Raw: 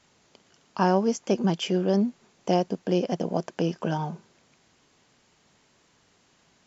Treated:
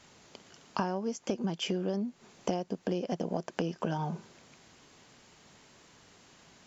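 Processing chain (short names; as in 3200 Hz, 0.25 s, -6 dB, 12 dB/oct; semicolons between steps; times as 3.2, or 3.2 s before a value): compressor 20:1, threshold -33 dBFS, peak gain reduction 17.5 dB; gain +5 dB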